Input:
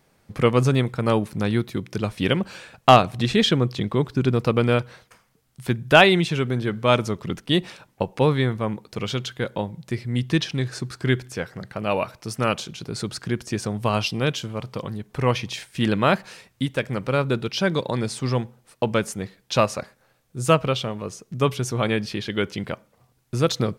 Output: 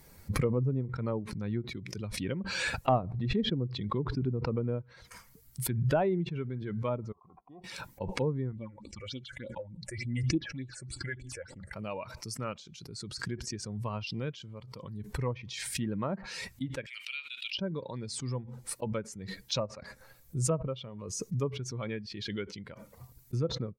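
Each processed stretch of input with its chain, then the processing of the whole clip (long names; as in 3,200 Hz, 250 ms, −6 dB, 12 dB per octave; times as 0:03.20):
0:07.12–0:07.64: formant resonators in series a + notch filter 640 Hz, Q 11
0:08.52–0:11.73: Chebyshev low-pass filter 9,300 Hz, order 3 + comb filter 3.5 ms, depth 46% + all-pass phaser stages 6, 3.4 Hz, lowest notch 230–1,700 Hz
0:16.86–0:17.58: high-pass with resonance 2,800 Hz, resonance Q 3.5 + notch filter 5,900 Hz, Q 27
whole clip: spectral dynamics exaggerated over time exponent 1.5; treble cut that deepens with the level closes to 710 Hz, closed at −18.5 dBFS; background raised ahead of every attack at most 33 dB per second; level −9 dB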